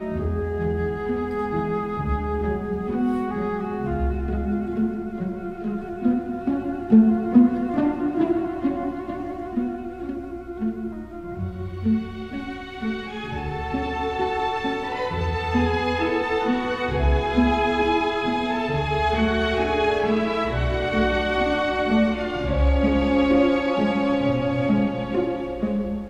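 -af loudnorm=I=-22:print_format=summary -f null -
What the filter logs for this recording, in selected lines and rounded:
Input Integrated:    -23.3 LUFS
Input True Peak:      -4.5 dBTP
Input LRA:             6.6 LU
Input Threshold:     -33.4 LUFS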